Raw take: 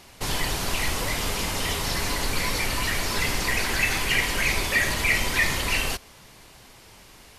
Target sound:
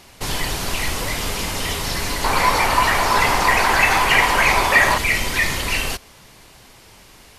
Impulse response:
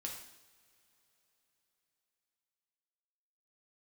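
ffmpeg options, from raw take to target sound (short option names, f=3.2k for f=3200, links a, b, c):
-filter_complex "[0:a]asettb=1/sr,asplit=3[a][b][c];[a]atrim=end=2.244[d];[b]atrim=start=2.24:end=4.98,asetpts=PTS-STARTPTS,afade=t=in:d=0.004:c=qsin,afade=t=out:st=2.736:d=0.004:c=qsin,equalizer=f=930:w=0.87:g=15[e];[c]atrim=start=4.976[f];[d][e]acrossfade=d=0.004:c1=hsin:c2=qsin[g];[g][f]acrossfade=d=0.004:c1=qsin:c2=hsin,volume=3dB"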